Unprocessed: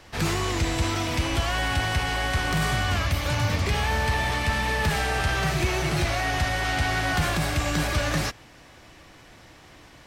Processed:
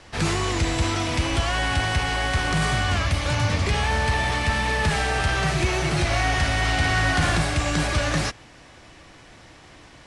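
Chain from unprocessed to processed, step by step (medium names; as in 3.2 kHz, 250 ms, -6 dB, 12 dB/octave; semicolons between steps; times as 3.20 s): steep low-pass 11 kHz 96 dB/octave; 6.05–7.42 s: flutter echo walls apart 9.4 m, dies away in 0.55 s; trim +2 dB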